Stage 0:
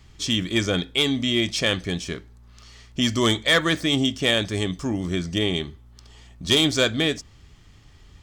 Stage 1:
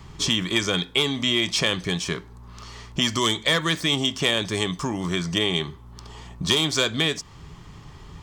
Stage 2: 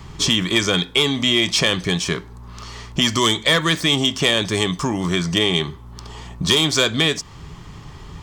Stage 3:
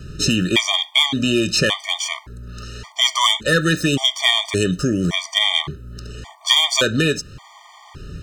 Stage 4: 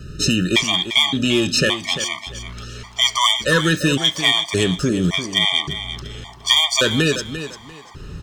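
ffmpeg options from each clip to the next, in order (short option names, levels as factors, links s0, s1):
-filter_complex "[0:a]equalizer=f=160:t=o:w=0.67:g=10,equalizer=f=400:t=o:w=0.67:g=6,equalizer=f=1000:t=o:w=0.67:g=12,acrossover=split=700|2000[s0][s1][s2];[s0]acompressor=threshold=0.0251:ratio=4[s3];[s1]acompressor=threshold=0.0126:ratio=4[s4];[s2]acompressor=threshold=0.0562:ratio=4[s5];[s3][s4][s5]amix=inputs=3:normalize=0,volume=1.68"
-af "asoftclip=type=tanh:threshold=0.355,volume=1.88"
-af "afftfilt=real='re*gt(sin(2*PI*0.88*pts/sr)*(1-2*mod(floor(b*sr/1024/610),2)),0)':imag='im*gt(sin(2*PI*0.88*pts/sr)*(1-2*mod(floor(b*sr/1024/610),2)),0)':win_size=1024:overlap=0.75,volume=1.5"
-af "aecho=1:1:345|690|1035:0.282|0.0676|0.0162"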